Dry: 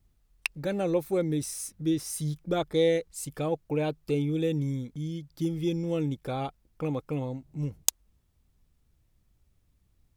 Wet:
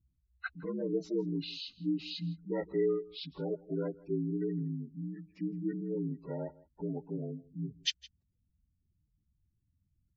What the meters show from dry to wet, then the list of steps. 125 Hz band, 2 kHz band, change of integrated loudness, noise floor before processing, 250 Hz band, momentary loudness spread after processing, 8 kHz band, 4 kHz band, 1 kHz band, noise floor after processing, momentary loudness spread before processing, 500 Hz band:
−8.0 dB, −7.0 dB, −6.5 dB, −70 dBFS, −5.0 dB, 9 LU, −18.5 dB, −0.5 dB, −14.0 dB, −79 dBFS, 8 LU, −6.5 dB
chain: partials spread apart or drawn together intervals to 77%
gate on every frequency bin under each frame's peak −20 dB strong
single-tap delay 162 ms −21.5 dB
level −5.5 dB

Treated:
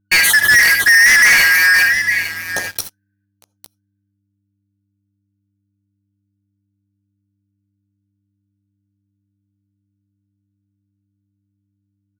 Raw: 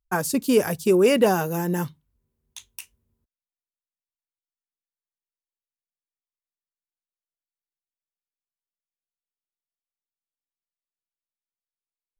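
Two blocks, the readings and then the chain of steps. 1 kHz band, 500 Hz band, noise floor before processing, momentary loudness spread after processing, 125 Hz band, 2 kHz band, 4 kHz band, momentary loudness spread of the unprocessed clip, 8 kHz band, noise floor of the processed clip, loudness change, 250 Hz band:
+1.5 dB, −15.5 dB, below −85 dBFS, 15 LU, −7.5 dB, +26.0 dB, +18.0 dB, 12 LU, +16.0 dB, −70 dBFS, +12.0 dB, −15.0 dB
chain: band-splitting scrambler in four parts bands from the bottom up 3142
parametric band 7,500 Hz −11 dB 0.26 octaves
reverb whose tail is shaped and stops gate 100 ms rising, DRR 8 dB
hum with harmonics 100 Hz, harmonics 3, −60 dBFS −5 dB per octave
on a send: single-tap delay 857 ms −17 dB
on the sum: leveller curve on the samples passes 5

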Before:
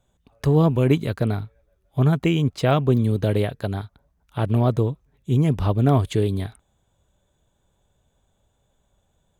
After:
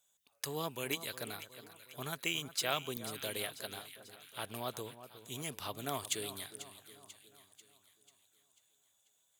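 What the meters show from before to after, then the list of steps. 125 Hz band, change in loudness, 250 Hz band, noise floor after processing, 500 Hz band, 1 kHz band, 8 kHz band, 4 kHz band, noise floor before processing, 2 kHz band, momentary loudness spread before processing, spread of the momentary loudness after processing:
−30.5 dB, −18.0 dB, −25.0 dB, −75 dBFS, −19.0 dB, −13.5 dB, can't be measured, −2.0 dB, −69 dBFS, −6.5 dB, 13 LU, 18 LU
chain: first difference
echo with a time of its own for lows and highs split 1,600 Hz, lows 363 ms, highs 491 ms, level −13 dB
level +4 dB

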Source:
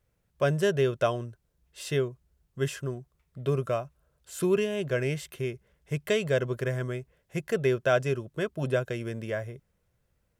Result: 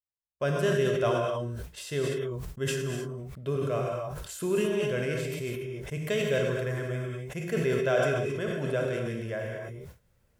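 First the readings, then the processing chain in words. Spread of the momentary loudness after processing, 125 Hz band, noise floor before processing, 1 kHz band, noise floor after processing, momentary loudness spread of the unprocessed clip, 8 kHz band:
11 LU, −0.5 dB, −74 dBFS, +0.5 dB, −69 dBFS, 13 LU, +1.5 dB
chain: reverb whose tail is shaped and stops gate 300 ms flat, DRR 1 dB
downward expander −48 dBFS
level that may fall only so fast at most 23 dB per second
level −4.5 dB

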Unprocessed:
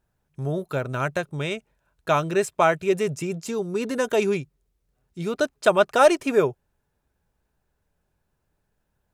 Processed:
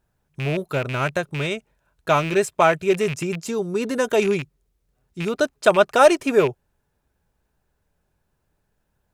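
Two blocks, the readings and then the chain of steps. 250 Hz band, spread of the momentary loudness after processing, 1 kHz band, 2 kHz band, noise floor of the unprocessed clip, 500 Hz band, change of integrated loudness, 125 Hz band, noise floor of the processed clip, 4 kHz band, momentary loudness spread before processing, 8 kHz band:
+2.5 dB, 12 LU, +2.5 dB, +3.5 dB, −75 dBFS, +2.5 dB, +2.5 dB, +2.5 dB, −72 dBFS, +3.5 dB, 12 LU, +2.5 dB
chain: loose part that buzzes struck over −30 dBFS, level −22 dBFS
level +2.5 dB

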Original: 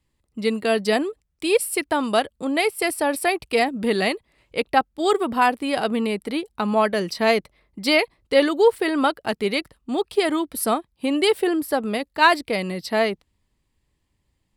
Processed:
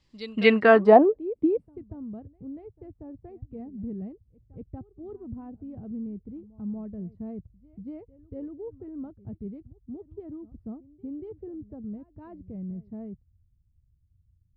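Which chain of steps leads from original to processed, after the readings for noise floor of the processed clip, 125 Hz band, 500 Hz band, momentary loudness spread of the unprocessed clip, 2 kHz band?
−67 dBFS, −2.5 dB, −5.0 dB, 8 LU, can't be measured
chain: echo ahead of the sound 236 ms −19.5 dB
low-pass filter sweep 5,200 Hz → 100 Hz, 0:00.15–0:01.85
level +3 dB

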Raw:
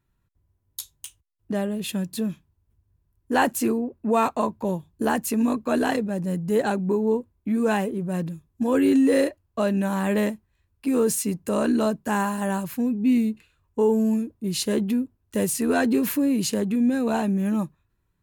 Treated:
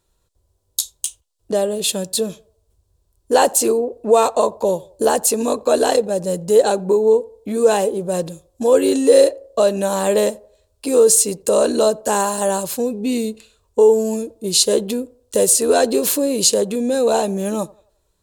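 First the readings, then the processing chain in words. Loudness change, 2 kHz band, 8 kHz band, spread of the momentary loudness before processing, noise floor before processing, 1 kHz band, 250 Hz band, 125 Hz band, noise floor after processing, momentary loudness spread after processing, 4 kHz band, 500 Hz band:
+6.5 dB, +0.5 dB, +14.5 dB, 9 LU, −73 dBFS, +6.0 dB, −1.5 dB, −2.0 dB, −66 dBFS, 11 LU, +12.0 dB, +11.0 dB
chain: octave-band graphic EQ 125/250/500/2,000/4,000/8,000 Hz −9/−8/+11/−8/+8/+11 dB
in parallel at −1.5 dB: downward compressor, threshold −24 dBFS, peak gain reduction 13.5 dB
on the sum: feedback echo with a band-pass in the loop 88 ms, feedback 41%, band-pass 620 Hz, level −22 dB
level +1.5 dB

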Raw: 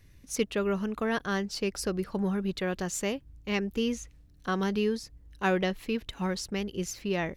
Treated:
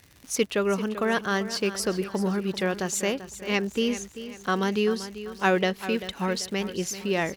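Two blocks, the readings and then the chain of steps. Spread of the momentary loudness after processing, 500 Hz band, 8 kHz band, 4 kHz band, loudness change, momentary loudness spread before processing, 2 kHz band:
6 LU, +4.5 dB, +6.0 dB, +5.5 dB, +4.0 dB, 6 LU, +5.5 dB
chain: high-pass filter 58 Hz
low-shelf EQ 160 Hz −9 dB
surface crackle 130 per second −42 dBFS
repeating echo 390 ms, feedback 42%, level −13 dB
level +5.5 dB

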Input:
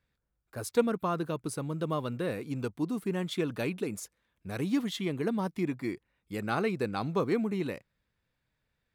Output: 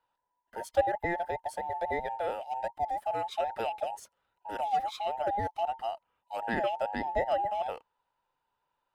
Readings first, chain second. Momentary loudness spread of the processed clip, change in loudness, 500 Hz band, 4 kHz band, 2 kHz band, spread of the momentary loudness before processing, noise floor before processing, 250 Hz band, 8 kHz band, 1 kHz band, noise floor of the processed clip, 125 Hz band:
10 LU, 0.0 dB, 0.0 dB, −3.0 dB, +1.0 dB, 11 LU, −81 dBFS, −13.0 dB, −8.5 dB, +9.0 dB, −82 dBFS, −12.5 dB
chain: frequency inversion band by band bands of 1,000 Hz
high-shelf EQ 3,500 Hz −10 dB

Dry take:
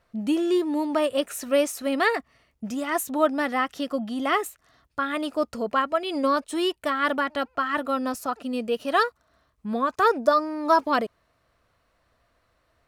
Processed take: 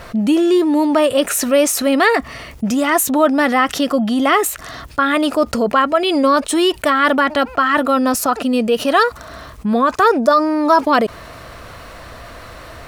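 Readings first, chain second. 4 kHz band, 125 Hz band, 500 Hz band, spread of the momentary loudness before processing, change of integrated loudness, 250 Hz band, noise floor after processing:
+10.5 dB, can't be measured, +9.0 dB, 8 LU, +9.5 dB, +11.0 dB, −37 dBFS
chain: envelope flattener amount 50%
level +6 dB

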